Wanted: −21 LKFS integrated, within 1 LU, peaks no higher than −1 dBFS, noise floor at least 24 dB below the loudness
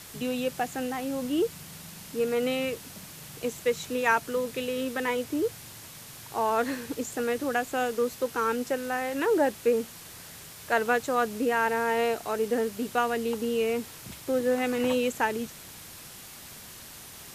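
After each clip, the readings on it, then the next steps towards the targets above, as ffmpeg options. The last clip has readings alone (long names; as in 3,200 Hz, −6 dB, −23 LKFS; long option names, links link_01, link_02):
background noise floor −46 dBFS; target noise floor −53 dBFS; integrated loudness −28.5 LKFS; sample peak −9.5 dBFS; target loudness −21.0 LKFS
→ -af "afftdn=noise_reduction=7:noise_floor=-46"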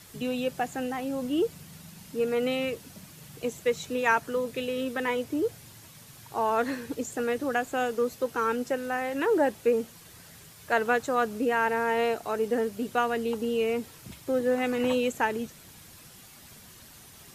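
background noise floor −51 dBFS; target noise floor −53 dBFS
→ -af "afftdn=noise_reduction=6:noise_floor=-51"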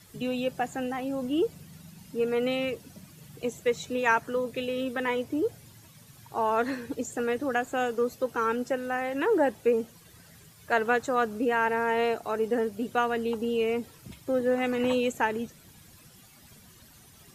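background noise floor −54 dBFS; integrated loudness −28.5 LKFS; sample peak −9.5 dBFS; target loudness −21.0 LKFS
→ -af "volume=7.5dB"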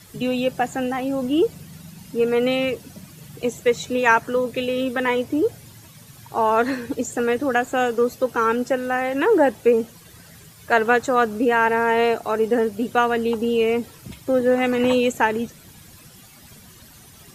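integrated loudness −21.0 LKFS; sample peak −2.0 dBFS; background noise floor −47 dBFS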